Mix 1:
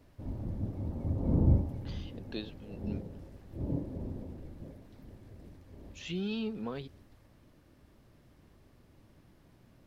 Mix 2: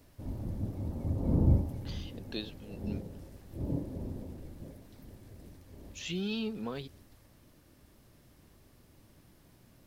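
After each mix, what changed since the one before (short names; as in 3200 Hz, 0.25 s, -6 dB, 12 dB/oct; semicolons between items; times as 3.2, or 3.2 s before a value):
master: add high shelf 5000 Hz +12 dB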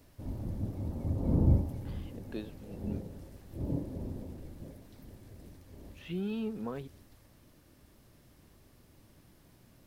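speech: add LPF 1700 Hz 12 dB/oct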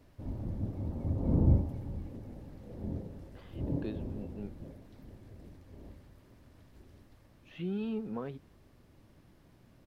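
speech: entry +1.50 s; master: add high shelf 5000 Hz -12 dB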